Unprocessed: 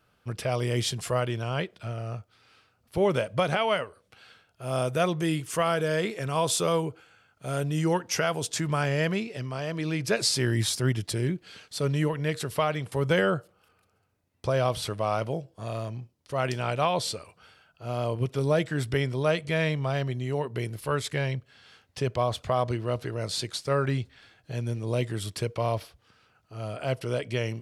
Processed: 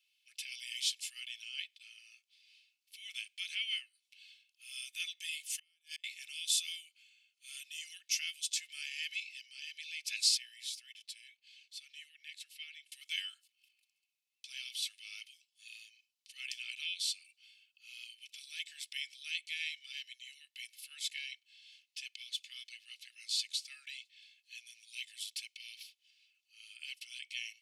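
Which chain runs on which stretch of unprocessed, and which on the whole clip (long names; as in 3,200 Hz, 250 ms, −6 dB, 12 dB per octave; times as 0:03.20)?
0:05.32–0:06.04: Butterworth high-pass 580 Hz 72 dB per octave + high-shelf EQ 4,900 Hz +3.5 dB + gate with flip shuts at −21 dBFS, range −34 dB
0:10.37–0:12.92: high-pass filter 1,400 Hz + high-shelf EQ 2,200 Hz −11 dB
whole clip: Butterworth high-pass 2,400 Hz 48 dB per octave; high-shelf EQ 4,900 Hz −7 dB; comb filter 2.3 ms, depth 51%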